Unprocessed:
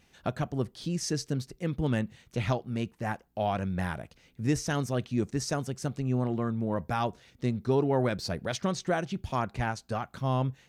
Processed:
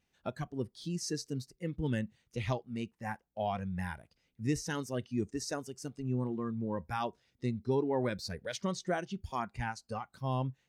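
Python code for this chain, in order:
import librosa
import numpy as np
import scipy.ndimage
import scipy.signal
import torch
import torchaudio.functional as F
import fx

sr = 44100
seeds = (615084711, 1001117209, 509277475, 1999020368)

y = fx.noise_reduce_blind(x, sr, reduce_db=11)
y = y * librosa.db_to_amplitude(-4.5)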